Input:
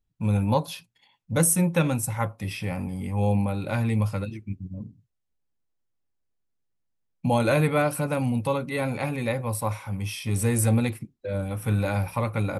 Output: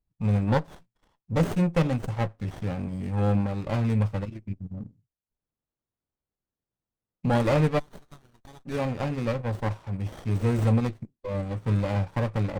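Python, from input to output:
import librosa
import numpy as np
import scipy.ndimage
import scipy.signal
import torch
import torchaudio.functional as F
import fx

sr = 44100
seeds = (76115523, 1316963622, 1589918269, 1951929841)

y = fx.steep_highpass(x, sr, hz=2700.0, slope=48, at=(7.78, 8.65), fade=0.02)
y = fx.transient(y, sr, attack_db=-1, sustain_db=-7)
y = fx.brickwall_lowpass(y, sr, high_hz=8900.0)
y = fx.running_max(y, sr, window=17)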